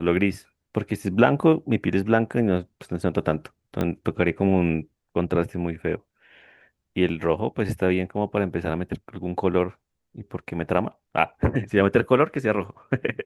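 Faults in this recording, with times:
3.81 pop -13 dBFS

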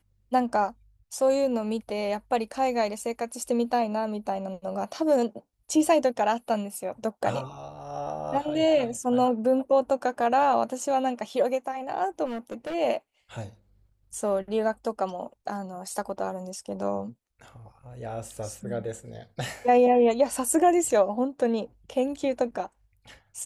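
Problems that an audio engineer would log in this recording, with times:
12.25–12.75 clipped -30 dBFS

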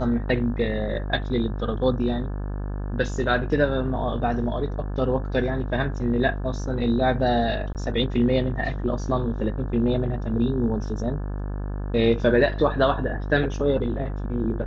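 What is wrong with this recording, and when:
buzz 50 Hz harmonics 35 -29 dBFS
7.73–7.75 gap 18 ms

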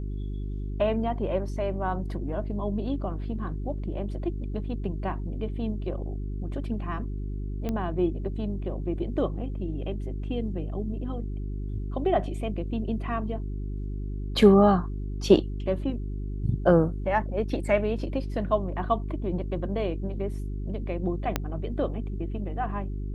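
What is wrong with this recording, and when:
hum 50 Hz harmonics 8 -32 dBFS
7.69 pop -18 dBFS
21.36 pop -10 dBFS

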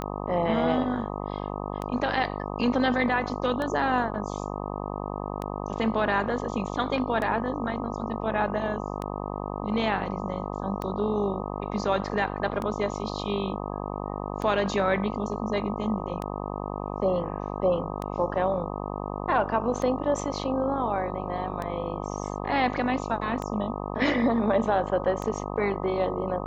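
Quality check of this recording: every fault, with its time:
buzz 50 Hz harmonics 25 -33 dBFS
tick 33 1/3 rpm -18 dBFS

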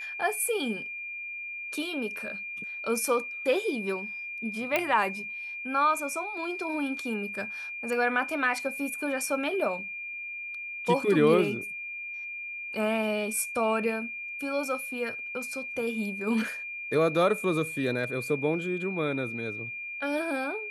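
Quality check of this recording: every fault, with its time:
tone 2400 Hz -35 dBFS
4.76 pop -11 dBFS

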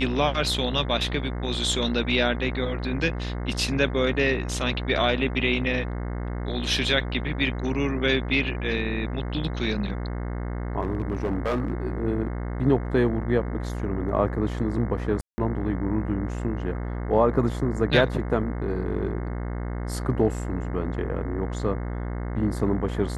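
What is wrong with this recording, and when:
buzz 60 Hz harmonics 36 -30 dBFS
10.81–11.86 clipped -20.5 dBFS
15.21–15.38 gap 0.17 s

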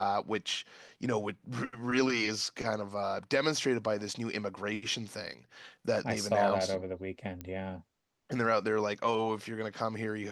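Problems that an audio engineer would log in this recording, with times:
7.41 pop -25 dBFS

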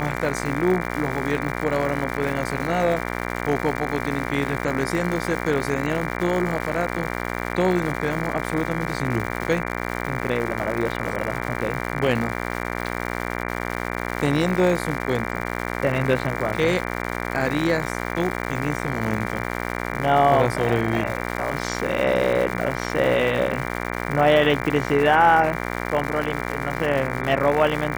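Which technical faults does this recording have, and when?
buzz 60 Hz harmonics 39 -28 dBFS
crackle 290/s -28 dBFS

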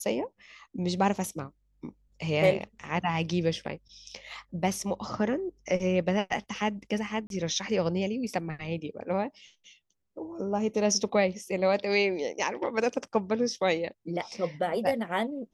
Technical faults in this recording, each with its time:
7.27–7.3 gap 32 ms

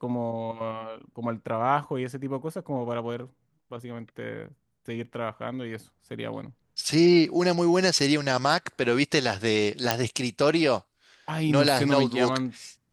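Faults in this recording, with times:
9.91 pop

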